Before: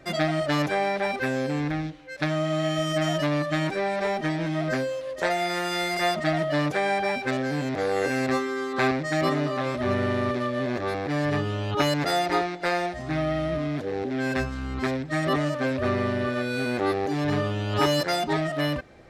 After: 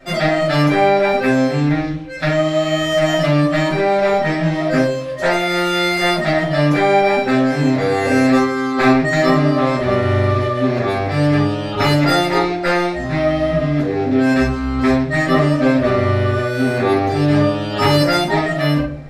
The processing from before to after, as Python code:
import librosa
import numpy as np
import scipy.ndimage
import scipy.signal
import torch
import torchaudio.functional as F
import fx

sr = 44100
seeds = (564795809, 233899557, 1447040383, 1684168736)

y = fx.room_shoebox(x, sr, seeds[0], volume_m3=310.0, walls='furnished', distance_m=6.8)
y = y * 10.0 ** (-2.0 / 20.0)